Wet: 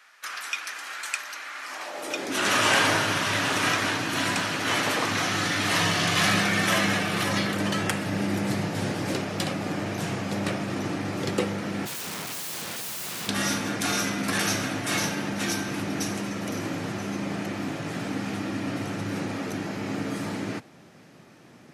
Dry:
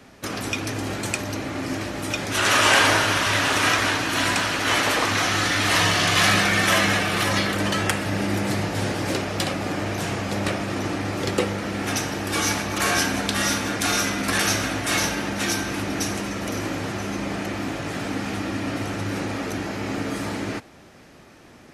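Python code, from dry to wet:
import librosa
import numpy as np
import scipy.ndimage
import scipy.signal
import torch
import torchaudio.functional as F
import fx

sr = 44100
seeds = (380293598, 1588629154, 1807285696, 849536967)

y = fx.overflow_wrap(x, sr, gain_db=25.0, at=(11.85, 13.27), fade=0.02)
y = fx.filter_sweep_highpass(y, sr, from_hz=1400.0, to_hz=140.0, start_s=1.61, end_s=2.6, q=1.8)
y = F.gain(torch.from_numpy(y), -4.5).numpy()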